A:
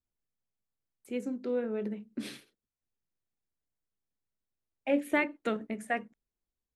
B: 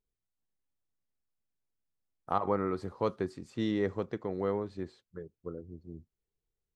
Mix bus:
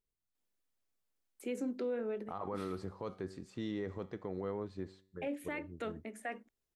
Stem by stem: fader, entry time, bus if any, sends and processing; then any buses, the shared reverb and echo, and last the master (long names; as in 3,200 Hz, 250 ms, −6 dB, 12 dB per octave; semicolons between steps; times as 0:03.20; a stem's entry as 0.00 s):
+2.5 dB, 0.35 s, no send, high-pass filter 240 Hz 24 dB per octave; automatic ducking −9 dB, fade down 0.40 s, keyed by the second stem
+0.5 dB, 0.00 s, no send, tuned comb filter 95 Hz, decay 0.58 s, harmonics all, mix 40%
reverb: not used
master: brickwall limiter −29.5 dBFS, peak gain reduction 12 dB